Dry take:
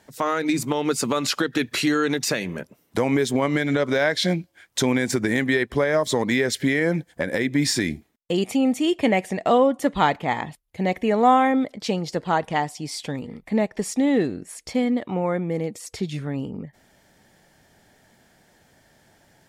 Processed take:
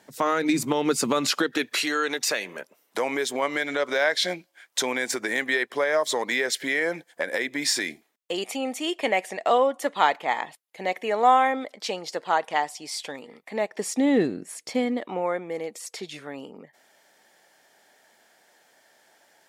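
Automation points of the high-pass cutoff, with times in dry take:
1.22 s 160 Hz
1.78 s 530 Hz
13.58 s 530 Hz
14.21 s 160 Hz
15.44 s 500 Hz

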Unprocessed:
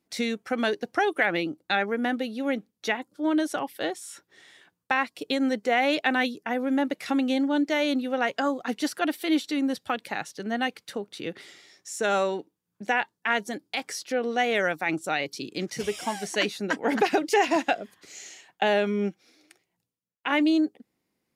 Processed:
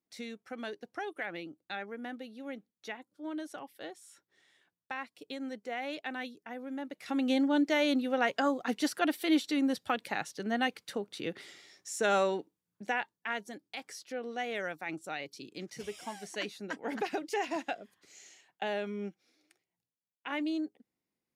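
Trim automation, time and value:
6.90 s -14.5 dB
7.30 s -3 dB
12.35 s -3 dB
13.46 s -11.5 dB

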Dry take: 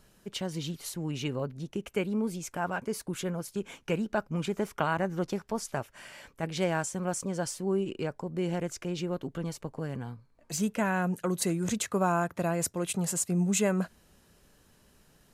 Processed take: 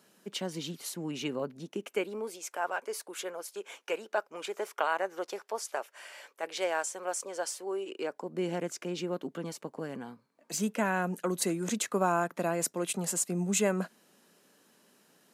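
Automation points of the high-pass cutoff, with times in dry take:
high-pass 24 dB/octave
1.59 s 190 Hz
2.41 s 420 Hz
7.81 s 420 Hz
8.40 s 200 Hz

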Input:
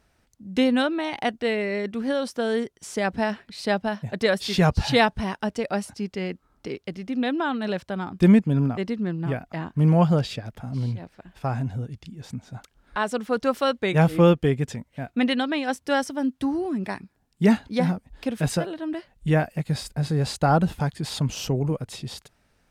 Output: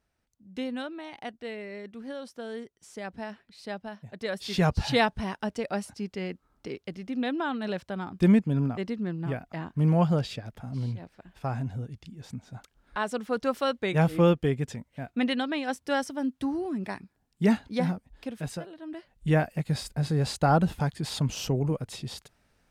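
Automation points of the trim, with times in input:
4.18 s -13 dB
4.60 s -4.5 dB
17.87 s -4.5 dB
18.70 s -13 dB
19.31 s -2.5 dB

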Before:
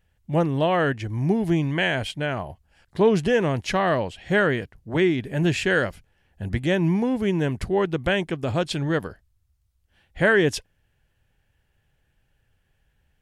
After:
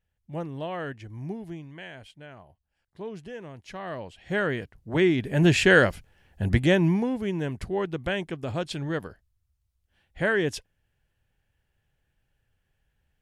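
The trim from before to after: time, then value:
1.25 s -12 dB
1.66 s -19 dB
3.57 s -19 dB
4.31 s -7 dB
5.66 s +4 dB
6.56 s +4 dB
7.22 s -6 dB

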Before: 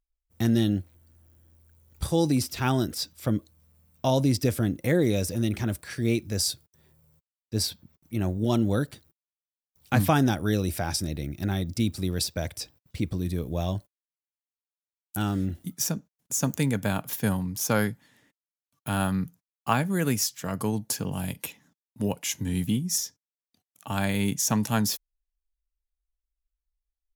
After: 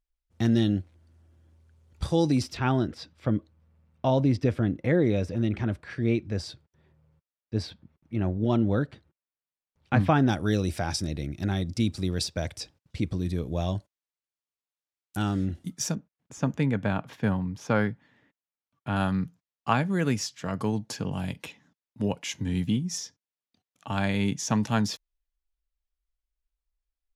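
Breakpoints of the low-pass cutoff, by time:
5.4 kHz
from 2.57 s 2.6 kHz
from 10.29 s 6.9 kHz
from 15.95 s 2.6 kHz
from 18.96 s 4.8 kHz

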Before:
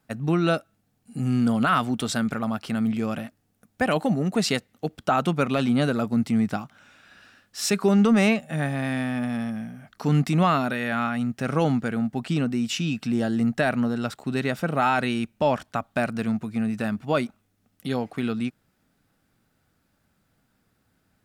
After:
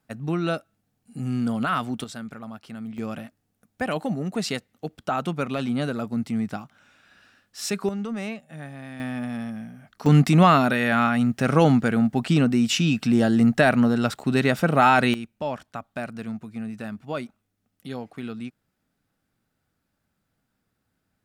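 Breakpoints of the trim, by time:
-3.5 dB
from 2.04 s -11 dB
from 2.98 s -4 dB
from 7.89 s -12 dB
from 9.00 s -3 dB
from 10.06 s +5 dB
from 15.14 s -7 dB

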